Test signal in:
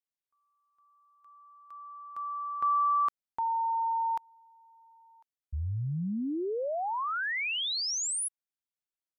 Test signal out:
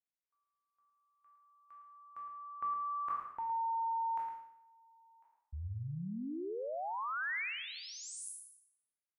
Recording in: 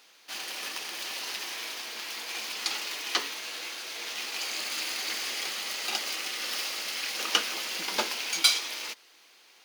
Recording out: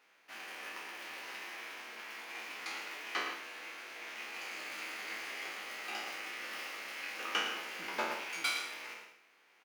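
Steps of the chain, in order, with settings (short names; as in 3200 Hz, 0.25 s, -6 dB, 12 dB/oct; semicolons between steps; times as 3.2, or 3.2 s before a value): spectral trails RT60 0.73 s; resonant high shelf 2900 Hz -9 dB, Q 1.5; outdoor echo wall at 19 m, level -8 dB; gain -9 dB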